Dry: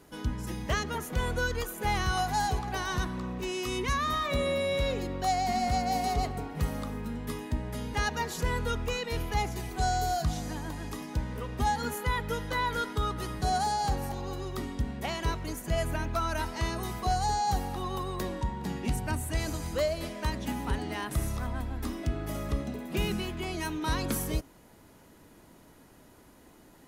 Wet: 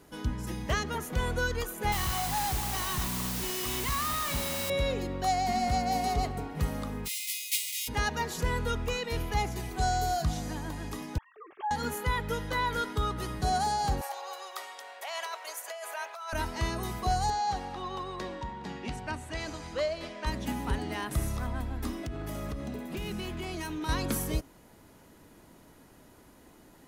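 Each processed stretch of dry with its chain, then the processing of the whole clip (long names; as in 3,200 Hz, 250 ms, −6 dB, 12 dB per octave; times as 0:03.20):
0:01.92–0:04.70: tube saturation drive 30 dB, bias 0.4 + comb filter 1 ms, depth 51% + bit-depth reduction 6 bits, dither triangular
0:07.05–0:07.87: spectral envelope flattened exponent 0.1 + linear-phase brick-wall high-pass 1,900 Hz + double-tracking delay 22 ms −5 dB
0:11.18–0:11.71: three sine waves on the formant tracks + downward compressor, threshold −29 dBFS + notch comb filter 490 Hz
0:14.01–0:16.33: Butterworth high-pass 570 Hz + compressor whose output falls as the input rises −37 dBFS
0:17.30–0:20.27: low-pass filter 5,200 Hz + low-shelf EQ 270 Hz −10.5 dB
0:21.91–0:23.89: downward compressor, threshold −31 dBFS + hard clipping −30.5 dBFS
whole clip: no processing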